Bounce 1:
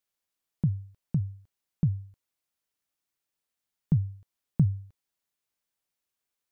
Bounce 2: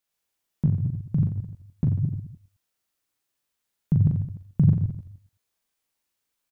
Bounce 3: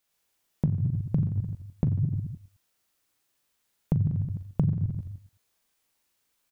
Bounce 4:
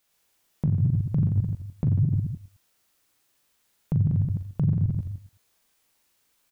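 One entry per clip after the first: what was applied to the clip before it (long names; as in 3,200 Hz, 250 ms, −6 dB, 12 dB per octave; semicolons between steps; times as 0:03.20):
delay that plays each chunk backwards 108 ms, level −2 dB; on a send: reverse bouncing-ball delay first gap 40 ms, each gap 1.2×, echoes 5; on the sum: level +1.5 dB
downward compressor 6 to 1, threshold −28 dBFS, peak gain reduction 14 dB; level +5.5 dB
brickwall limiter −20.5 dBFS, peak gain reduction 10 dB; level +5.5 dB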